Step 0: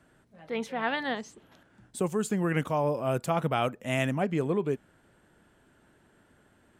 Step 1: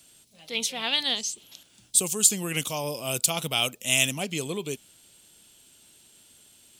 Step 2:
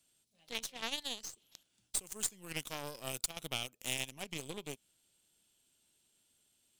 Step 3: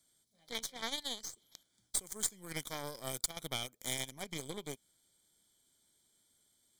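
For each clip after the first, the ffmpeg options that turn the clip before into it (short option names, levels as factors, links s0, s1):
-af "aexciter=amount=11.3:drive=7:freq=2600,volume=0.596"
-af "acompressor=threshold=0.0282:ratio=4,aeval=exprs='0.15*(cos(1*acos(clip(val(0)/0.15,-1,1)))-cos(1*PI/2))+0.0211*(cos(3*acos(clip(val(0)/0.15,-1,1)))-cos(3*PI/2))+0.0119*(cos(6*acos(clip(val(0)/0.15,-1,1)))-cos(6*PI/2))+0.00944*(cos(7*acos(clip(val(0)/0.15,-1,1)))-cos(7*PI/2))+0.00422*(cos(8*acos(clip(val(0)/0.15,-1,1)))-cos(8*PI/2))':c=same,volume=0.891"
-af "asuperstop=centerf=2700:order=12:qfactor=4.4,volume=1.12"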